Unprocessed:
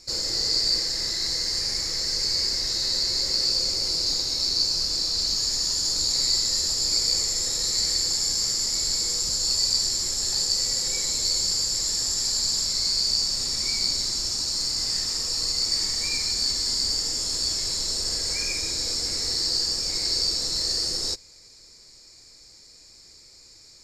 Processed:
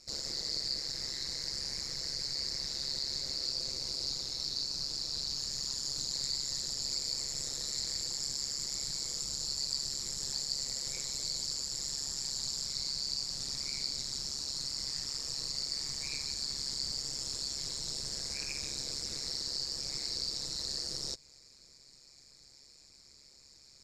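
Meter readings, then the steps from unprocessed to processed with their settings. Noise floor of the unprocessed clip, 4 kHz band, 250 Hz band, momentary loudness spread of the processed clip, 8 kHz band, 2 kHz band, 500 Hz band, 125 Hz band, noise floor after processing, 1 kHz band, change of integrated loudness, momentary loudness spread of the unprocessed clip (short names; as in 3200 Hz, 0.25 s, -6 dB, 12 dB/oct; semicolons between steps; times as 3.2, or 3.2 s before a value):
-51 dBFS, -11.5 dB, -9.5 dB, 2 LU, -12.0 dB, -11.0 dB, -11.5 dB, -8.5 dB, -59 dBFS, -11.0 dB, -12.0 dB, 4 LU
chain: compressor 1.5:1, threshold -31 dBFS, peak gain reduction 5 dB; AM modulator 140 Hz, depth 85%; Doppler distortion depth 0.16 ms; gain -4 dB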